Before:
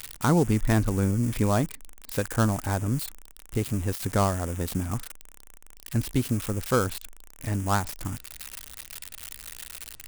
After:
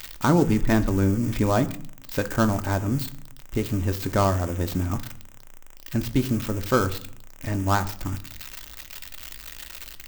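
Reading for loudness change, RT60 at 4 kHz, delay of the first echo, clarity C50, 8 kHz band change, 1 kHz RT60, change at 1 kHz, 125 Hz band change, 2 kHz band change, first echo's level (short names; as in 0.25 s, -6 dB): +2.5 dB, 0.35 s, none, 16.5 dB, -2.0 dB, 0.60 s, +3.0 dB, +1.0 dB, +3.0 dB, none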